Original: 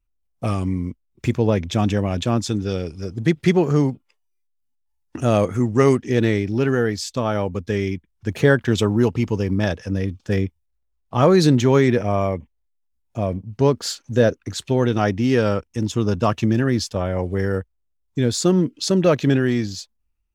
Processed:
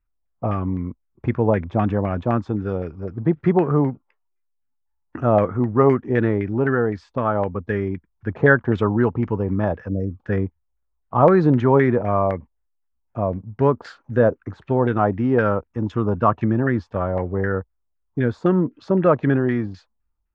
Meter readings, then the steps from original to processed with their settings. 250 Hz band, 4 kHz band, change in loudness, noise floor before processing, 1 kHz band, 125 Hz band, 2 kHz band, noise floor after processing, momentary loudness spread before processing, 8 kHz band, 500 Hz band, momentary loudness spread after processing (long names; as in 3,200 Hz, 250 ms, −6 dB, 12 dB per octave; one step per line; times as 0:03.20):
−1.0 dB, below −15 dB, −0.5 dB, −70 dBFS, +3.5 dB, −1.5 dB, +1.5 dB, −72 dBFS, 11 LU, below −30 dB, 0.0 dB, 11 LU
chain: auto-filter low-pass saw down 3.9 Hz 800–1,800 Hz
gain on a spectral selection 0:09.89–0:10.11, 670–5,200 Hz −26 dB
level −1.5 dB